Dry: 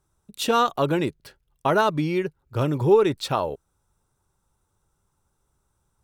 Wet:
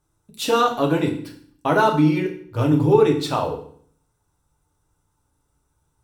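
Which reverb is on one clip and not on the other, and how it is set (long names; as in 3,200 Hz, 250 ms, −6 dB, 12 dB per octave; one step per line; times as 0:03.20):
feedback delay network reverb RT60 0.55 s, low-frequency decay 1.4×, high-frequency decay 0.95×, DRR 0.5 dB
level −1 dB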